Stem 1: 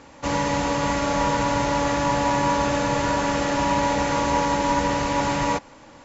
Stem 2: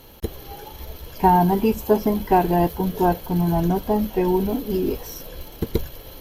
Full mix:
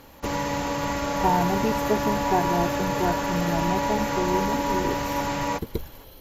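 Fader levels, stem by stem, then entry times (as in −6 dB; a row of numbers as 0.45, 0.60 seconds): −4.0, −7.0 decibels; 0.00, 0.00 seconds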